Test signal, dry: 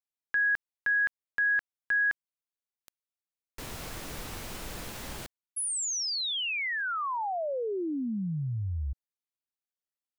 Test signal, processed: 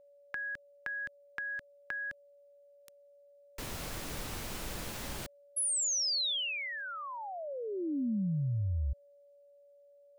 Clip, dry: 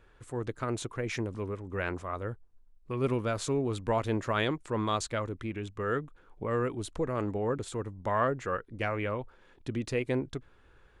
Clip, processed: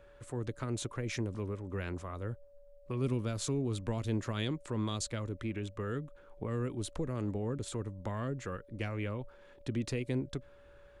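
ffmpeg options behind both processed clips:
ffmpeg -i in.wav -filter_complex "[0:a]acrossover=split=310|3200[link_01][link_02][link_03];[link_02]acompressor=threshold=-41dB:ratio=6:attack=9.3:release=333:knee=2.83:detection=peak[link_04];[link_01][link_04][link_03]amix=inputs=3:normalize=0,aeval=exprs='val(0)+0.00126*sin(2*PI*570*n/s)':channel_layout=same" out.wav

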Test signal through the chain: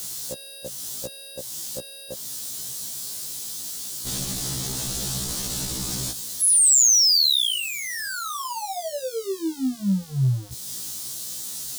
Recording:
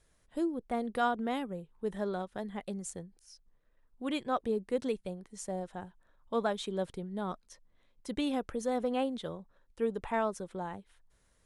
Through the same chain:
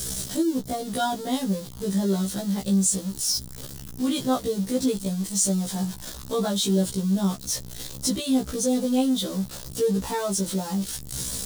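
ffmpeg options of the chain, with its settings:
ffmpeg -i in.wav -filter_complex "[0:a]aeval=exprs='val(0)+0.5*0.0106*sgn(val(0))':channel_layout=same,acrossover=split=10000[link_01][link_02];[link_02]acompressor=threshold=-57dB:ratio=4:attack=1:release=60[link_03];[link_01][link_03]amix=inputs=2:normalize=0,equalizer=frequency=150:width=0.52:gain=14,asplit=2[link_04][link_05];[link_05]acompressor=threshold=-35dB:ratio=12,volume=0dB[link_06];[link_04][link_06]amix=inputs=2:normalize=0,aexciter=amount=7.7:drive=2.6:freq=3400,afftfilt=real='re*1.73*eq(mod(b,3),0)':imag='im*1.73*eq(mod(b,3),0)':win_size=2048:overlap=0.75" out.wav

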